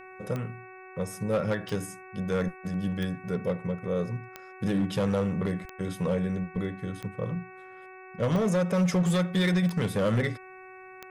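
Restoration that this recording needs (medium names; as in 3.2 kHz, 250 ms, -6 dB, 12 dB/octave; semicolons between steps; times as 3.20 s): clip repair -20 dBFS; de-click; de-hum 374.2 Hz, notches 7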